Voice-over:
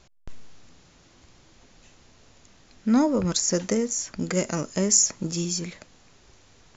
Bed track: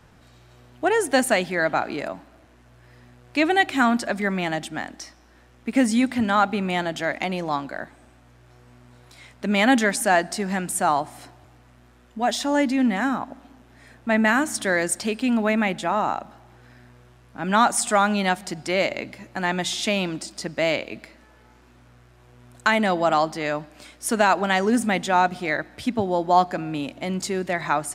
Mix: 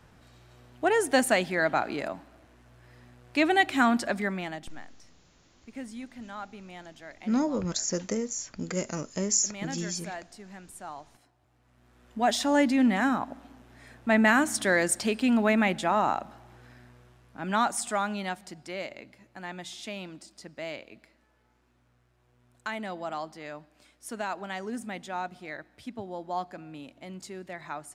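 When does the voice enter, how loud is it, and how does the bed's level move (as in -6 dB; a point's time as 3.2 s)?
4.40 s, -6.0 dB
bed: 4.15 s -3.5 dB
4.98 s -20.5 dB
11.32 s -20.5 dB
12.12 s -2 dB
16.57 s -2 dB
18.96 s -15 dB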